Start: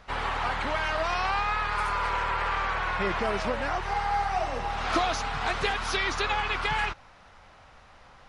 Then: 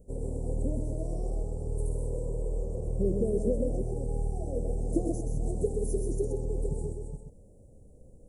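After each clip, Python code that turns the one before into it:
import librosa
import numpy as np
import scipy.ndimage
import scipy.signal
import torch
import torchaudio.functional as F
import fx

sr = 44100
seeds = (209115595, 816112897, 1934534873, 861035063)

y = fx.reverse_delay(x, sr, ms=239, wet_db=-7.0)
y = scipy.signal.sosfilt(scipy.signal.cheby1(4, 1.0, [500.0, 8000.0], 'bandstop', fs=sr, output='sos'), y)
y = y + 10.0 ** (-6.0 / 20.0) * np.pad(y, (int(128 * sr / 1000.0), 0))[:len(y)]
y = y * librosa.db_to_amplitude(3.0)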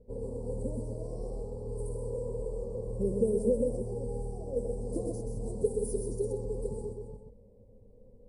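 y = fx.ripple_eq(x, sr, per_octave=0.92, db=12)
y = fx.env_lowpass(y, sr, base_hz=2400.0, full_db=-21.5)
y = fx.low_shelf(y, sr, hz=370.0, db=-6.0)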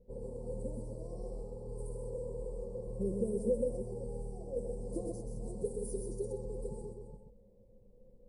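y = x + 0.45 * np.pad(x, (int(5.7 * sr / 1000.0), 0))[:len(x)]
y = y * librosa.db_to_amplitude(-5.5)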